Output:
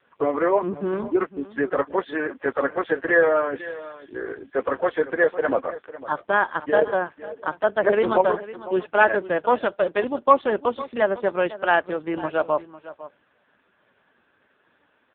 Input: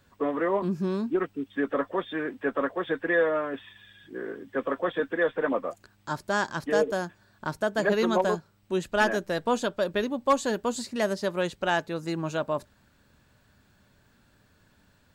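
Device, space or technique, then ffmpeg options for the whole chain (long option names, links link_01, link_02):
satellite phone: -af "highpass=360,lowpass=3400,aecho=1:1:503:0.158,volume=8dB" -ar 8000 -c:a libopencore_amrnb -b:a 4750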